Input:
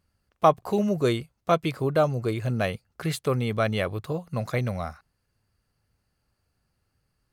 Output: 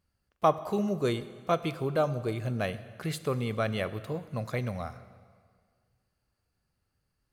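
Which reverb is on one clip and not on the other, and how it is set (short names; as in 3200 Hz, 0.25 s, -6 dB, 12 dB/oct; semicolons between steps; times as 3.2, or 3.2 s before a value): plate-style reverb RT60 1.9 s, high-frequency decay 0.85×, pre-delay 0 ms, DRR 13 dB; gain -5 dB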